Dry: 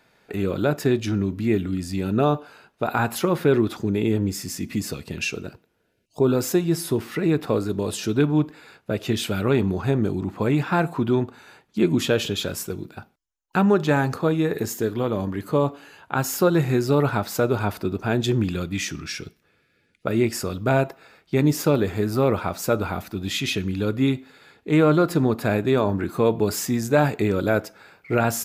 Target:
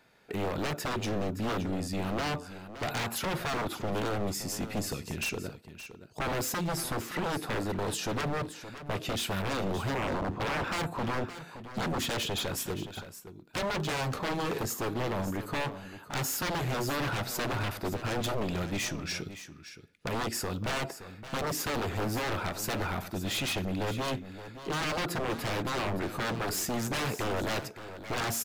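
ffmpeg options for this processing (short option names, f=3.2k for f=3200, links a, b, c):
-filter_complex "[0:a]asettb=1/sr,asplit=3[a][b][c];[a]atrim=end=9.954[d];[b]atrim=start=9.95:end=10.64,asetpts=PTS-STARTPTS,afade=t=in:d=0.004:c=qsin,afade=t=out:st=0.686:d=0.004:c=qsin,aemphasis=mode=reproduction:type=riaa[e];[c]atrim=start=10.636[f];[d][e]acrossfade=d=0.004:c1=hsin:c2=qsin[g];[g][f]acrossfade=d=0.004:c1=qsin:c2=hsin,aeval=exprs='0.0708*(abs(mod(val(0)/0.0708+3,4)-2)-1)':c=same,aecho=1:1:570:0.237,volume=-3.5dB"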